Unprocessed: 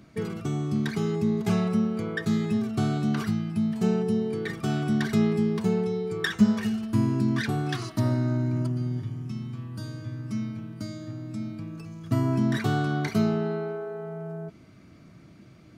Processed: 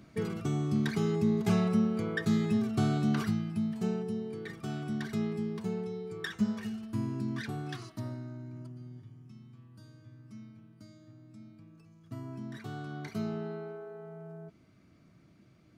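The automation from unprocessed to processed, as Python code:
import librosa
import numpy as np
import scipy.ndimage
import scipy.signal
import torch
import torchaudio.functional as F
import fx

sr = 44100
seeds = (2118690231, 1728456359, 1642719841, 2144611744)

y = fx.gain(x, sr, db=fx.line((3.17, -2.5), (4.14, -10.0), (7.73, -10.0), (8.33, -17.5), (12.52, -17.5), (13.37, -10.0)))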